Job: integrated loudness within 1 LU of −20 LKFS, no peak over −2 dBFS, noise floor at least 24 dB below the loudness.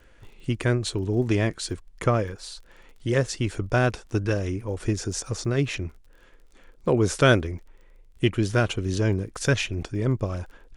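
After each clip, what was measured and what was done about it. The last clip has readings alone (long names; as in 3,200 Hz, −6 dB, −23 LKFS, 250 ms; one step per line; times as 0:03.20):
crackle rate 25 per second; integrated loudness −25.5 LKFS; sample peak −6.5 dBFS; target loudness −20.0 LKFS
→ click removal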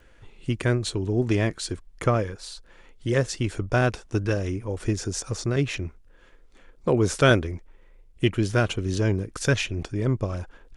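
crackle rate 0.093 per second; integrated loudness −25.5 LKFS; sample peak −6.5 dBFS; target loudness −20.0 LKFS
→ level +5.5 dB
brickwall limiter −2 dBFS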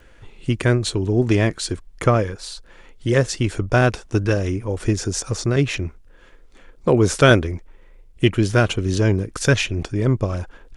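integrated loudness −20.5 LKFS; sample peak −2.0 dBFS; background noise floor −48 dBFS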